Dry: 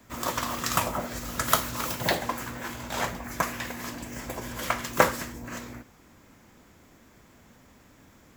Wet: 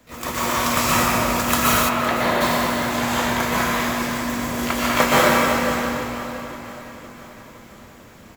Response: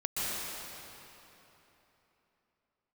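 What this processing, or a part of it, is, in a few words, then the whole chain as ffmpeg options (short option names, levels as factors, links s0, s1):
shimmer-style reverb: -filter_complex "[0:a]asplit=2[s0][s1];[s1]asetrate=88200,aresample=44100,atempo=0.5,volume=0.447[s2];[s0][s2]amix=inputs=2:normalize=0[s3];[1:a]atrim=start_sample=2205[s4];[s3][s4]afir=irnorm=-1:irlink=0,asplit=3[s5][s6][s7];[s5]afade=t=out:st=1.88:d=0.02[s8];[s6]bass=f=250:g=-6,treble=f=4000:g=-15,afade=t=in:st=1.88:d=0.02,afade=t=out:st=2.4:d=0.02[s9];[s7]afade=t=in:st=2.4:d=0.02[s10];[s8][s9][s10]amix=inputs=3:normalize=0,aecho=1:1:512|1024|1536|2048|2560:0.141|0.0819|0.0475|0.0276|0.016,volume=1.19"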